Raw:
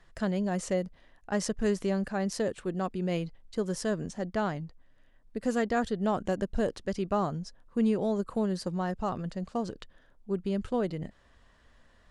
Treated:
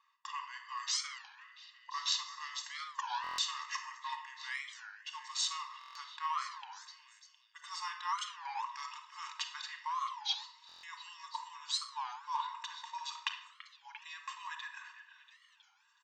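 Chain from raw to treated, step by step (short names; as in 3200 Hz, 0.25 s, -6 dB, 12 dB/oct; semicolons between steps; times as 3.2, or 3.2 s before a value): speed glide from 67% -> 84%; gate -51 dBFS, range -18 dB; comb 1.1 ms, depth 98%; reverse; compressor 6:1, threshold -36 dBFS, peak gain reduction 16 dB; reverse; brick-wall FIR band-pass 890–8200 Hz; on a send: delay with a stepping band-pass 0.344 s, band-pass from 1600 Hz, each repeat 0.7 oct, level -10 dB; on the sum: shoebox room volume 2700 m³, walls furnished, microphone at 2.3 m; stuck buffer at 3.22/5.79/10.67, samples 1024, times 6; record warp 33 1/3 rpm, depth 250 cents; gain +9.5 dB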